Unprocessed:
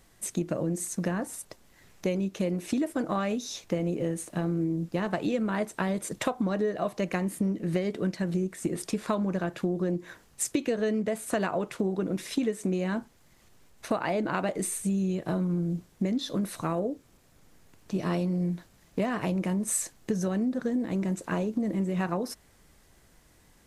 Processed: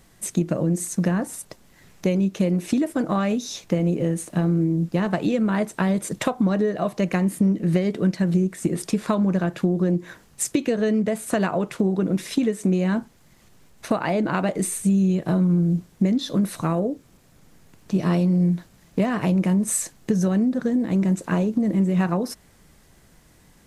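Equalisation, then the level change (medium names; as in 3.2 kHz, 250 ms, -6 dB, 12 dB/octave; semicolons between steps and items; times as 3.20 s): peaking EQ 170 Hz +5 dB 1 oct; +4.5 dB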